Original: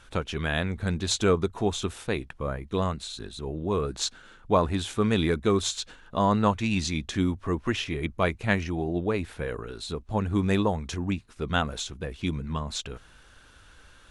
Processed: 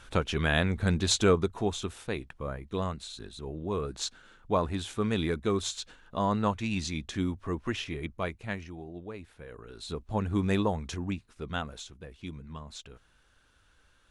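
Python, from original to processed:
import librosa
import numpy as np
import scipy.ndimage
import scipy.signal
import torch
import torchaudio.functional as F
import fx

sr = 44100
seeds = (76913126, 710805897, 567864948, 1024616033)

y = fx.gain(x, sr, db=fx.line((1.03, 1.5), (1.87, -5.0), (7.91, -5.0), (8.9, -14.5), (9.46, -14.5), (9.93, -3.0), (10.86, -3.0), (12.04, -11.5)))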